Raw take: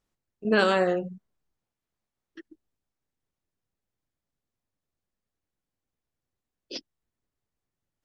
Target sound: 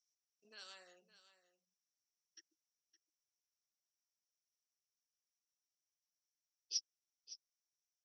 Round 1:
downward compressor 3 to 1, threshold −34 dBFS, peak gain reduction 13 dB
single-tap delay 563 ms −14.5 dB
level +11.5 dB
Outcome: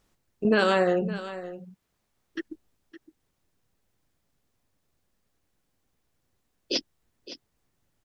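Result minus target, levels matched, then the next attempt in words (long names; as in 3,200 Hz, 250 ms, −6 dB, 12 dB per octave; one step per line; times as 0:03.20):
8,000 Hz band −18.0 dB
downward compressor 3 to 1, threshold −34 dBFS, peak gain reduction 13 dB
resonant band-pass 5,700 Hz, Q 13
single-tap delay 563 ms −14.5 dB
level +11.5 dB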